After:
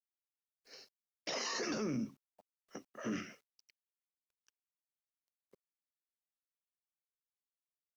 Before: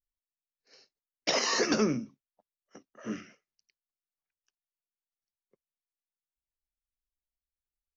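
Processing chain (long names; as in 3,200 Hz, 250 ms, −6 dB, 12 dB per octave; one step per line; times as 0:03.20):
in parallel at +1 dB: compressor whose output falls as the input rises −34 dBFS, ratio −0.5
on the sum: brickwall limiter −22.5 dBFS, peak gain reduction 8.5 dB
bit reduction 11 bits
level −7 dB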